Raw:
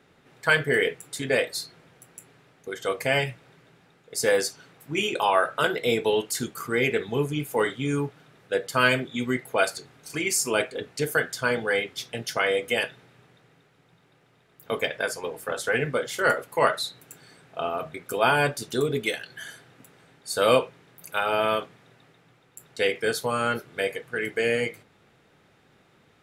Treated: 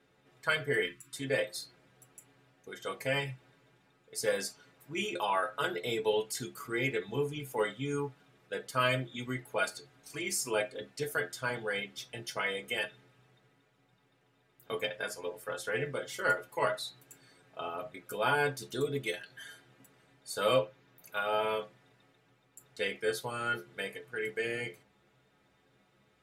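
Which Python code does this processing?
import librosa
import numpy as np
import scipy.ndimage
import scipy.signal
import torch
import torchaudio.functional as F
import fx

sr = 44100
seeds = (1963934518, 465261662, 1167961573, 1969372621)

y = fx.spec_erase(x, sr, start_s=0.85, length_s=0.28, low_hz=360.0, high_hz=990.0)
y = fx.peak_eq(y, sr, hz=9000.0, db=-10.5, octaves=0.36, at=(20.54, 21.17))
y = fx.stiff_resonator(y, sr, f0_hz=64.0, decay_s=0.23, stiffness=0.008)
y = y * 10.0 ** (-2.0 / 20.0)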